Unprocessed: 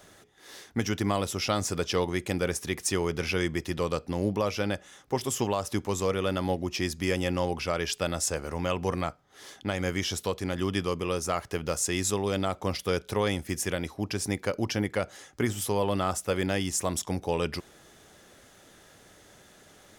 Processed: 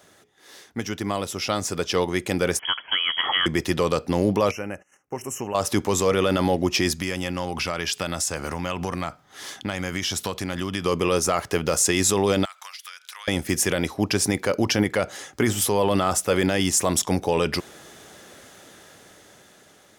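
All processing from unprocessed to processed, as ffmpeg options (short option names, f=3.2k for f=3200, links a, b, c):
-filter_complex "[0:a]asettb=1/sr,asplit=3[a][b][c];[a]atrim=end=2.594[d];[b]atrim=start=2.59:end=3.46,asetpts=PTS-STARTPTS,afade=t=in:d=0.004:c=qsin,afade=t=out:st=0.866:d=0.004:c=qsin,acrossover=split=460|1400[e][f][g];[e]acompressor=threshold=-34dB:ratio=4[h];[f]acompressor=threshold=-48dB:ratio=4[i];[g]acompressor=threshold=-32dB:ratio=4[j];[h][i][j]amix=inputs=3:normalize=0,lowpass=f=2.9k:t=q:w=0.5098,lowpass=f=2.9k:t=q:w=0.6013,lowpass=f=2.9k:t=q:w=0.9,lowpass=f=2.9k:t=q:w=2.563,afreqshift=-3400,equalizer=f=2.1k:t=o:w=0.59:g=9[k];[c]atrim=start=3.456[l];[d][k]acrossfade=d=0.004:c1=hsin:c2=qsin[m];[m][l]acrossfade=d=0.004:c1=qsin:c2=hsin,asettb=1/sr,asplit=3[n][o][p];[n]atrim=end=4.514[q];[o]atrim=start=4.51:end=5.55,asetpts=PTS-STARTPTS,afade=t=in:d=0.004:c=qsin,afade=t=out:st=1.036:d=0.004:c=qsin,agate=range=-23dB:threshold=-49dB:ratio=16:release=100:detection=peak,acompressor=threshold=-58dB:ratio=1.5:attack=3.2:release=140:knee=1:detection=peak,asuperstop=centerf=4000:order=20:qfactor=1.7[r];[p]atrim=start=5.546[s];[q][r]acrossfade=d=0.004:c1=hsin:c2=qsin[t];[t][s]acrossfade=d=0.004:c1=qsin:c2=hsin,asettb=1/sr,asplit=3[u][v][w];[u]atrim=end=6.944[x];[v]atrim=start=6.94:end=10.86,asetpts=PTS-STARTPTS,afade=t=in:d=0.004:c=qsin,afade=t=out:st=3.916:d=0.004:c=qsin,equalizer=f=460:t=o:w=0.92:g=-6,acompressor=threshold=-32dB:ratio=5:attack=3.2:release=140:knee=1:detection=peak,asoftclip=type=hard:threshold=-23.5dB[y];[w]atrim=start=10.856[z];[x][y]acrossfade=d=0.004:c1=hsin:c2=qsin[aa];[aa][z]acrossfade=d=0.004:c1=qsin:c2=hsin,asettb=1/sr,asplit=3[ab][ac][ad];[ab]atrim=end=12.454[ae];[ac]atrim=start=12.45:end=13.28,asetpts=PTS-STARTPTS,afade=t=in:d=0.004:c=qsin,afade=t=out:st=0.826:d=0.004:c=qsin,highpass=f=1.3k:w=0.5412,highpass=f=1.3k:w=1.3066,acompressor=threshold=-45dB:ratio=20:attack=3.2:release=140:knee=1:detection=peak[af];[ad]atrim=start=13.276[ag];[ae][af]acrossfade=d=0.004:c1=hsin:c2=qsin[ah];[ah][ag]acrossfade=d=0.004:c1=qsin:c2=hsin,highpass=f=130:p=1,dynaudnorm=f=880:g=5:m=11.5dB,alimiter=limit=-9.5dB:level=0:latency=1:release=15"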